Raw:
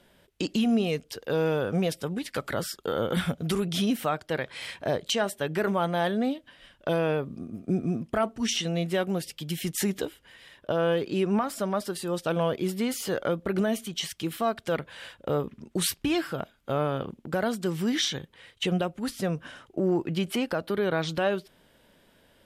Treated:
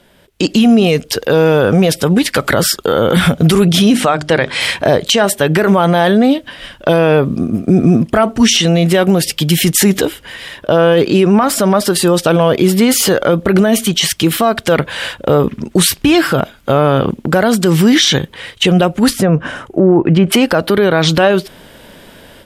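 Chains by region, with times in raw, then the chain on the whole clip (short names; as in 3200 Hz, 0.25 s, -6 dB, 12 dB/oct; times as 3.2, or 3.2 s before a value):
3.92–4.6 LPF 9800 Hz 24 dB/oct + upward compressor, threshold -42 dBFS + notches 50/100/150/200/250/300/350/400 Hz
19.13–20.32 treble ducked by the level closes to 2100 Hz, closed at -22 dBFS + bell 4200 Hz -8.5 dB 1.5 oct
whole clip: AGC gain up to 12 dB; maximiser +11.5 dB; gain -1 dB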